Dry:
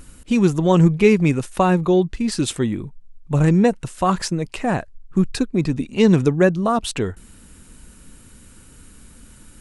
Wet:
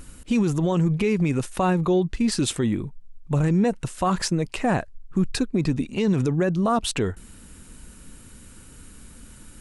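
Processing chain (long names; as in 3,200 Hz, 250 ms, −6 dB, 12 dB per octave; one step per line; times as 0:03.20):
brickwall limiter −13.5 dBFS, peak gain reduction 11 dB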